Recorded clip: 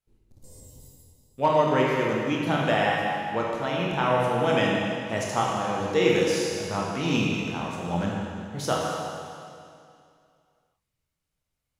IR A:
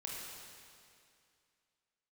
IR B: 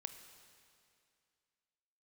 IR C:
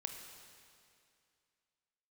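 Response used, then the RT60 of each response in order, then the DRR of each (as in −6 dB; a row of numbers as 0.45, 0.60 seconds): A; 2.4, 2.4, 2.4 seconds; −3.5, 8.0, 4.0 decibels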